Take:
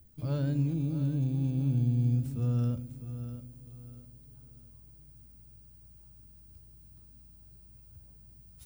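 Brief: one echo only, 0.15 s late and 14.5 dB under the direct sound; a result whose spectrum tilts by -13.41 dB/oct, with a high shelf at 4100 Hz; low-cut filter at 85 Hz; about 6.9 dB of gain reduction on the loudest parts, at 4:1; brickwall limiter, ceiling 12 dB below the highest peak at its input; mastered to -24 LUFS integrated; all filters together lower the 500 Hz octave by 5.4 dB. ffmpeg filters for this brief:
-af "highpass=85,equalizer=f=500:t=o:g=-6.5,highshelf=f=4.1k:g=-7,acompressor=threshold=-33dB:ratio=4,alimiter=level_in=15dB:limit=-24dB:level=0:latency=1,volume=-15dB,aecho=1:1:150:0.188,volume=22.5dB"

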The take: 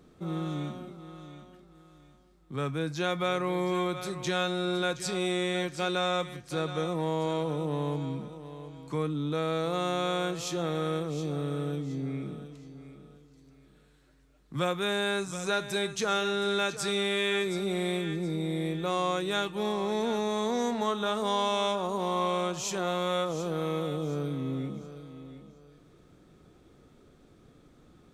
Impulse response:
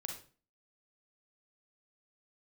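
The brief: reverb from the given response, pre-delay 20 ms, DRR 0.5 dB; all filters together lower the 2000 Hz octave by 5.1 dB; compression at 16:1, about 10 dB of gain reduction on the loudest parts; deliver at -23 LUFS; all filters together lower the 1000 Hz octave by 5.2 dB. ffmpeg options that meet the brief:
-filter_complex "[0:a]equalizer=f=1k:t=o:g=-5.5,equalizer=f=2k:t=o:g=-5,acompressor=threshold=-36dB:ratio=16,asplit=2[a][b];[1:a]atrim=start_sample=2205,adelay=20[c];[b][c]afir=irnorm=-1:irlink=0,volume=1dB[d];[a][d]amix=inputs=2:normalize=0,volume=14.5dB"

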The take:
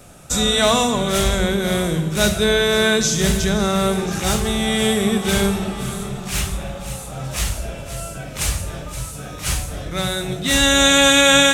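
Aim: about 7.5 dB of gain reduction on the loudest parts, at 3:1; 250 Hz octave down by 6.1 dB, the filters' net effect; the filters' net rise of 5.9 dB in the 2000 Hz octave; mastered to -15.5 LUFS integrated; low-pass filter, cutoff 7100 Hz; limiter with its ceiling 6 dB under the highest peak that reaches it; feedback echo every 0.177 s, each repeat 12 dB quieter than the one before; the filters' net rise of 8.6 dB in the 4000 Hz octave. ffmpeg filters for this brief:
-af "lowpass=7.1k,equalizer=f=250:t=o:g=-8.5,equalizer=f=2k:t=o:g=5.5,equalizer=f=4k:t=o:g=8.5,acompressor=threshold=-14dB:ratio=3,alimiter=limit=-9.5dB:level=0:latency=1,aecho=1:1:177|354|531:0.251|0.0628|0.0157,volume=4dB"

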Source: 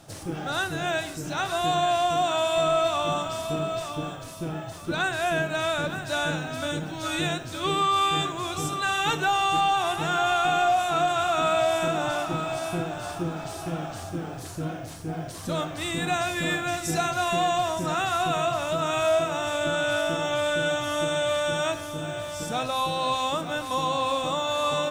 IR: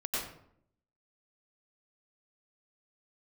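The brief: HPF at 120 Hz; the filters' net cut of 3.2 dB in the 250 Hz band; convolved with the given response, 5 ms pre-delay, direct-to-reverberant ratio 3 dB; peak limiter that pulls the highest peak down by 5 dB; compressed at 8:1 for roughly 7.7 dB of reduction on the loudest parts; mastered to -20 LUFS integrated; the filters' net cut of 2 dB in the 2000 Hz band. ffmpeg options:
-filter_complex "[0:a]highpass=120,equalizer=f=250:t=o:g=-4.5,equalizer=f=2k:t=o:g=-3,acompressor=threshold=-28dB:ratio=8,alimiter=level_in=1dB:limit=-24dB:level=0:latency=1,volume=-1dB,asplit=2[a][b];[1:a]atrim=start_sample=2205,adelay=5[c];[b][c]afir=irnorm=-1:irlink=0,volume=-8.5dB[d];[a][d]amix=inputs=2:normalize=0,volume=12dB"

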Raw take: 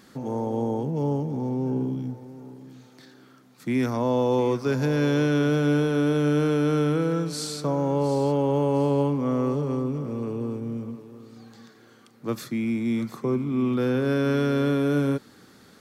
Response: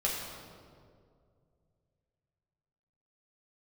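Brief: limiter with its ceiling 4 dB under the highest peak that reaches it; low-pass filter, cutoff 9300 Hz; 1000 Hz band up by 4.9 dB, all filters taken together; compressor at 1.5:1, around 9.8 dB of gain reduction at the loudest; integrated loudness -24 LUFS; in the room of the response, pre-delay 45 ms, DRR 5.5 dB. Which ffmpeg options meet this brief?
-filter_complex "[0:a]lowpass=9.3k,equalizer=f=1k:t=o:g=6,acompressor=threshold=-47dB:ratio=1.5,alimiter=level_in=1.5dB:limit=-24dB:level=0:latency=1,volume=-1.5dB,asplit=2[a][b];[1:a]atrim=start_sample=2205,adelay=45[c];[b][c]afir=irnorm=-1:irlink=0,volume=-12.5dB[d];[a][d]amix=inputs=2:normalize=0,volume=9.5dB"

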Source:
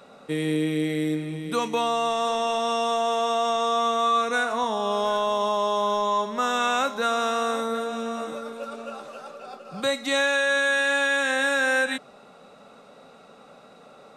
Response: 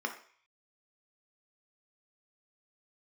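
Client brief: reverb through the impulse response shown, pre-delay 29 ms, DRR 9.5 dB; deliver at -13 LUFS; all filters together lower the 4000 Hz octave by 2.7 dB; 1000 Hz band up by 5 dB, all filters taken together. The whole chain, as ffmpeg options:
-filter_complex "[0:a]equalizer=f=1k:t=o:g=6.5,equalizer=f=4k:t=o:g=-3.5,asplit=2[a][b];[1:a]atrim=start_sample=2205,adelay=29[c];[b][c]afir=irnorm=-1:irlink=0,volume=-14dB[d];[a][d]amix=inputs=2:normalize=0,volume=8dB"

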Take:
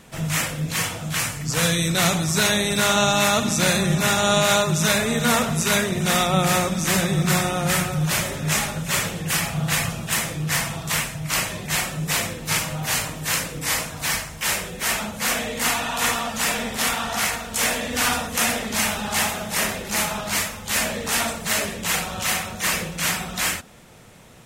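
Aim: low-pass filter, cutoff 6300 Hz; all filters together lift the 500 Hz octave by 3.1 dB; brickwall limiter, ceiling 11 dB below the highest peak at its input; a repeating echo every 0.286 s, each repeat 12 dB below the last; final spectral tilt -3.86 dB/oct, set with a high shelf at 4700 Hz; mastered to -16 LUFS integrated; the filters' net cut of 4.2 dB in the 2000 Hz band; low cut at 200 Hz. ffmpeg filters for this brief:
-af "highpass=200,lowpass=6.3k,equalizer=f=500:t=o:g=4.5,equalizer=f=2k:t=o:g=-4,highshelf=f=4.7k:g=-8.5,alimiter=limit=-17dB:level=0:latency=1,aecho=1:1:286|572|858:0.251|0.0628|0.0157,volume=11.5dB"

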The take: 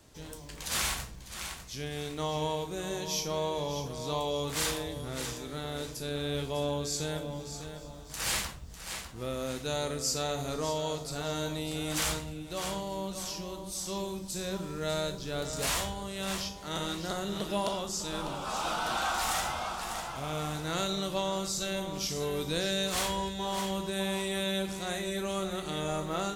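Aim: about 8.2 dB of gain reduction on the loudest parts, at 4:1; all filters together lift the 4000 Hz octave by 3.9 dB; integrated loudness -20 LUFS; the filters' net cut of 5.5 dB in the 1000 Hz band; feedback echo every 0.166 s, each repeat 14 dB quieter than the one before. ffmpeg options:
-af "equalizer=f=1k:t=o:g=-7.5,equalizer=f=4k:t=o:g=5,acompressor=threshold=-35dB:ratio=4,aecho=1:1:166|332:0.2|0.0399,volume=17.5dB"

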